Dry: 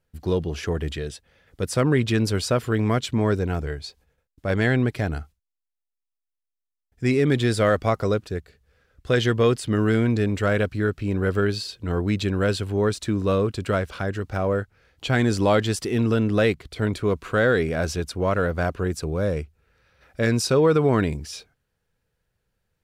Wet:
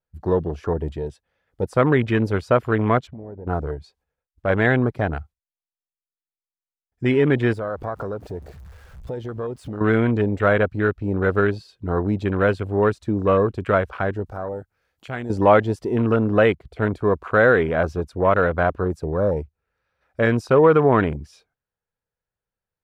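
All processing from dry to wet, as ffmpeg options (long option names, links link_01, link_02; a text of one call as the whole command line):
ffmpeg -i in.wav -filter_complex "[0:a]asettb=1/sr,asplit=3[link_01][link_02][link_03];[link_01]atrim=end=3.074[link_04];[link_02]atrim=start=3.07:end=3.47,asetpts=PTS-STARTPTS,afade=type=in:duration=0.004:curve=qsin,afade=type=out:start_time=0.396:duration=0.004:curve=qsin,lowpass=1700,acompressor=threshold=-35dB:ratio=8:attack=3.2:release=140:knee=1:detection=peak[link_05];[link_03]atrim=start=3.466[link_06];[link_04][link_05]acrossfade=duration=0.004:curve1=hsin:curve2=qsin[link_07];[link_07][link_06]acrossfade=duration=0.004:curve1=qsin:curve2=hsin,asettb=1/sr,asplit=3[link_08][link_09][link_10];[link_08]atrim=end=7.534[link_11];[link_09]atrim=start=7.53:end=9.81,asetpts=PTS-STARTPTS,afade=type=in:duration=0.004:curve=qsin,afade=type=out:start_time=2.276:duration=0.004:curve=qsin,aeval=exprs='val(0)+0.5*0.02*sgn(val(0))':channel_layout=same,acompressor=threshold=-29dB:ratio=6:attack=3.2:release=140:knee=1:detection=peak[link_12];[link_10]atrim=start=9.806[link_13];[link_11][link_12]acrossfade=duration=0.004:curve1=hsin:curve2=qsin[link_14];[link_14][link_13]acrossfade=duration=0.004:curve1=qsin:curve2=hsin,asettb=1/sr,asplit=3[link_15][link_16][link_17];[link_15]atrim=end=14.264[link_18];[link_16]atrim=start=14.26:end=15.3,asetpts=PTS-STARTPTS,afade=type=in:duration=0.004:curve=qsin,afade=type=out:start_time=1.036:duration=0.004:curve=qsin,acompressor=threshold=-38dB:ratio=2:attack=3.2:release=140:knee=1:detection=peak,aemphasis=mode=production:type=50kf[link_19];[link_17]atrim=start=15.296[link_20];[link_18][link_19]acrossfade=duration=0.004:curve1=hsin:curve2=qsin[link_21];[link_21][link_20]acrossfade=duration=0.004:curve1=qsin:curve2=hsin,equalizer=frequency=920:width_type=o:width=2:gain=8,afwtdn=0.0355,adynamicequalizer=threshold=0.00251:dfrequency=8300:dqfactor=1.7:tfrequency=8300:tqfactor=1.7:attack=5:release=100:ratio=0.375:range=2.5:mode=cutabove:tftype=bell" out.wav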